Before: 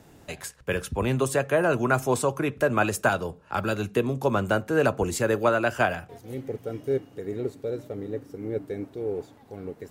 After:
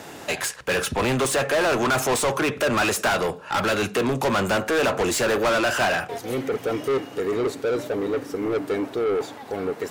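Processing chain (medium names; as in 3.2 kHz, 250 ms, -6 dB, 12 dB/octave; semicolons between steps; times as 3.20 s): overdrive pedal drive 30 dB, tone 6.3 kHz, clips at -10 dBFS; trim -4.5 dB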